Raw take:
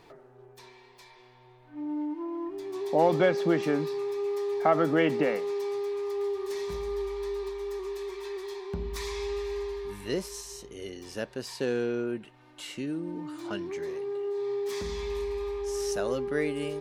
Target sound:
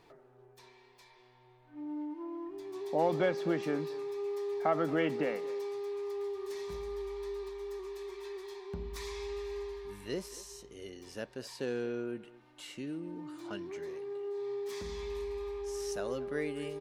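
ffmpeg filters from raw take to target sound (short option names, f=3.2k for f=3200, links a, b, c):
-filter_complex "[0:a]asplit=2[a][b];[b]adelay=230,highpass=300,lowpass=3.4k,asoftclip=type=hard:threshold=-20dB,volume=-17dB[c];[a][c]amix=inputs=2:normalize=0,volume=-6.5dB"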